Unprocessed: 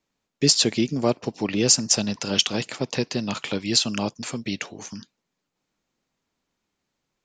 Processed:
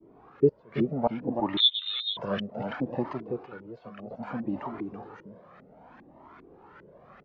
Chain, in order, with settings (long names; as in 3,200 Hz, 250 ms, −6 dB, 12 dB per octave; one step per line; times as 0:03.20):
converter with a step at zero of −29 dBFS
high-pass filter 150 Hz 6 dB per octave
downward expander −28 dBFS
0:03.13–0:04.11: tuned comb filter 730 Hz, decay 0.32 s, mix 80%
gate with flip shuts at −9 dBFS, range −28 dB
high-frequency loss of the air 120 metres
on a send: single-tap delay 330 ms −6 dB
on the sum: auto-filter low-pass saw up 2.5 Hz 330–1,700 Hz
0:01.57–0:02.17: voice inversion scrambler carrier 3,900 Hz
flanger whose copies keep moving one way rising 0.64 Hz